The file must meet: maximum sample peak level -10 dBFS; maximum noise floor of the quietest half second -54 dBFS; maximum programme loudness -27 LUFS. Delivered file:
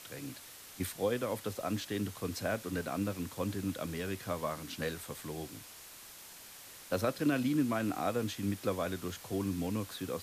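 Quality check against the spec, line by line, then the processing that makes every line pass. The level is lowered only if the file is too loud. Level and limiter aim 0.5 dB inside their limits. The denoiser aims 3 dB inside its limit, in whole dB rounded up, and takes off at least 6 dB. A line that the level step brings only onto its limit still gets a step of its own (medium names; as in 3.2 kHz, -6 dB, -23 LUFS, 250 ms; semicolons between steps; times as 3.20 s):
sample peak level -19.5 dBFS: pass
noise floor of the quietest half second -52 dBFS: fail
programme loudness -36.0 LUFS: pass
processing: noise reduction 6 dB, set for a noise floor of -52 dBFS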